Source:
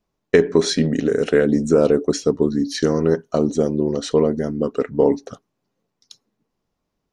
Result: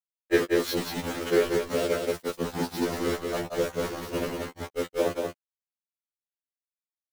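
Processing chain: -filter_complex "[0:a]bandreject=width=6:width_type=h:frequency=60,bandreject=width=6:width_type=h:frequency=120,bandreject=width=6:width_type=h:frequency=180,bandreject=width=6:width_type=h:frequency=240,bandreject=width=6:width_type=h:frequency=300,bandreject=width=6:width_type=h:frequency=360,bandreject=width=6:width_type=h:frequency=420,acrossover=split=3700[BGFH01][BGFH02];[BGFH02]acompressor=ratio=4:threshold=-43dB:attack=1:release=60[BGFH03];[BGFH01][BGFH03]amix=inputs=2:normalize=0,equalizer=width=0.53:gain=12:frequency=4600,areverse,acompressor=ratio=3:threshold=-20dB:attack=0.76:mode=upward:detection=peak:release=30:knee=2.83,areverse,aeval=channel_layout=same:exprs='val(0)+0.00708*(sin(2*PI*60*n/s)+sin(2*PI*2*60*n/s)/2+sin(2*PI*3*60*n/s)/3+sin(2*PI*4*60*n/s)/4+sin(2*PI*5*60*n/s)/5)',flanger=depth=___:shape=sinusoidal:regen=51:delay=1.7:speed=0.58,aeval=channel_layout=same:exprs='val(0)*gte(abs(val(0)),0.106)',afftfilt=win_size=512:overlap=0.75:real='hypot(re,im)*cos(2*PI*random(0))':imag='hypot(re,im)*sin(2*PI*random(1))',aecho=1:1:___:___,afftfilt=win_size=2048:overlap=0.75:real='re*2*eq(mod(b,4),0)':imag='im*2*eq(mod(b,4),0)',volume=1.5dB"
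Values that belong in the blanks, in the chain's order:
1.9, 185, 0.596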